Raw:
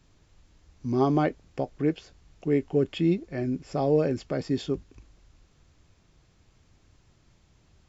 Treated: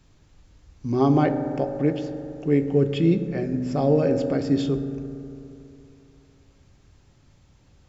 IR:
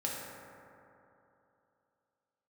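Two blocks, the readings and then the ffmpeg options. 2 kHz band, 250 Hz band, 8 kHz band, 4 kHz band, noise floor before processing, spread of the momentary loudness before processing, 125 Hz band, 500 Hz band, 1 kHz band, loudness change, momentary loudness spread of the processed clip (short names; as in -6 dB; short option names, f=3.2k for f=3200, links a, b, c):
+2.5 dB, +5.0 dB, n/a, +2.5 dB, -63 dBFS, 11 LU, +6.0 dB, +3.5 dB, +3.0 dB, +4.5 dB, 14 LU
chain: -filter_complex "[0:a]asplit=2[a][b];[1:a]atrim=start_sample=2205,lowshelf=f=260:g=7.5[c];[b][c]afir=irnorm=-1:irlink=0,volume=-9.5dB[d];[a][d]amix=inputs=2:normalize=0"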